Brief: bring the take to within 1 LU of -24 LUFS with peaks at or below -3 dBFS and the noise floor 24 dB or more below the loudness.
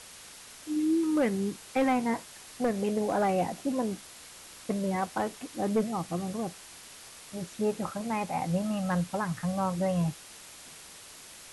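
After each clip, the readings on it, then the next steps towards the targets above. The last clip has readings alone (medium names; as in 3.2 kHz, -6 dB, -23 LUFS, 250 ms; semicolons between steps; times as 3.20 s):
clipped samples 0.4%; clipping level -20.0 dBFS; noise floor -49 dBFS; noise floor target -55 dBFS; loudness -30.5 LUFS; peak level -20.0 dBFS; loudness target -24.0 LUFS
-> clip repair -20 dBFS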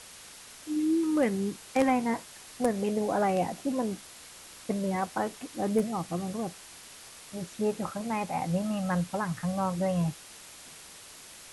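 clipped samples 0.0%; noise floor -49 dBFS; noise floor target -55 dBFS
-> noise print and reduce 6 dB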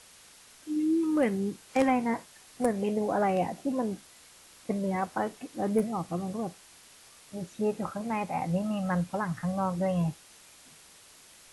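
noise floor -55 dBFS; loudness -30.5 LUFS; peak level -11.5 dBFS; loudness target -24.0 LUFS
-> trim +6.5 dB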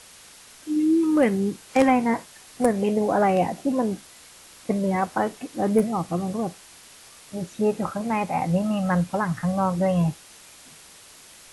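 loudness -24.0 LUFS; peak level -5.0 dBFS; noise floor -49 dBFS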